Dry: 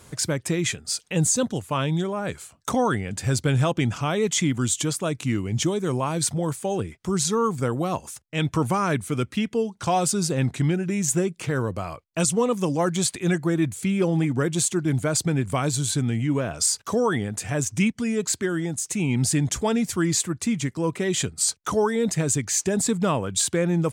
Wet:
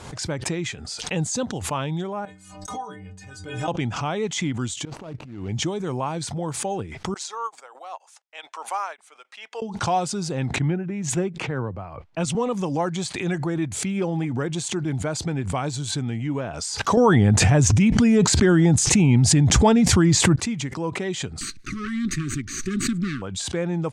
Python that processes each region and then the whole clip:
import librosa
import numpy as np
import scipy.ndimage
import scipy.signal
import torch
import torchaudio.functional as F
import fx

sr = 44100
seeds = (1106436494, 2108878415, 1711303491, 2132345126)

y = fx.chain(x, sr, fx.high_shelf(hz=7100.0, db=7.0),
    fx.stiff_resonator(f0_hz=90.0, decay_s=0.56, stiffness=0.03),
    fx.sustainer(db_per_s=110.0), at=(2.25, 3.68))
y = fx.chain(y, sr, fx.median_filter(points=25),
    fx.over_compress(threshold_db=-33.0, ratio=-0.5), at=(4.85, 5.49))
y = fx.chain(y, sr, fx.highpass(hz=630.0, slope=24),
    fx.upward_expand(threshold_db=-48.0, expansion=2.5), at=(7.14, 9.62))
y = fx.chain(y, sr, fx.bass_treble(bass_db=2, treble_db=-10),
    fx.band_widen(depth_pct=70), at=(10.56, 12.35))
y = fx.chain(y, sr, fx.low_shelf(hz=200.0, db=11.5),
    fx.env_flatten(amount_pct=100), at=(16.97, 20.36))
y = fx.chain(y, sr, fx.lower_of_two(delay_ms=0.48),
    fx.brickwall_bandstop(low_hz=400.0, high_hz=1100.0),
    fx.peak_eq(hz=260.0, db=4.5, octaves=0.68), at=(21.41, 23.22))
y = scipy.signal.sosfilt(scipy.signal.butter(2, 6000.0, 'lowpass', fs=sr, output='sos'), y)
y = fx.peak_eq(y, sr, hz=820.0, db=6.5, octaves=0.45)
y = fx.pre_swell(y, sr, db_per_s=57.0)
y = y * 10.0 ** (-3.5 / 20.0)